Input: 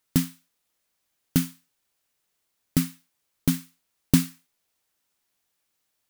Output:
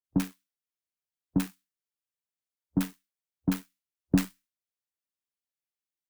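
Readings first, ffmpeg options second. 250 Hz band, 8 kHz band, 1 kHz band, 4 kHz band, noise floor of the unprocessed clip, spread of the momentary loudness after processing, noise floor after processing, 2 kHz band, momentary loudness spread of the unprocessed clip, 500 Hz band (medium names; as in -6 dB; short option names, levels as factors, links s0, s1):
-3.5 dB, -11.0 dB, +0.5 dB, -9.0 dB, -77 dBFS, 11 LU, under -85 dBFS, -3.0 dB, 12 LU, -0.5 dB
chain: -filter_complex "[0:a]afwtdn=0.0251,acrusher=bits=2:mode=log:mix=0:aa=0.000001,acrossover=split=920[s0][s1];[s1]adelay=40[s2];[s0][s2]amix=inputs=2:normalize=0,afreqshift=19,volume=0.631"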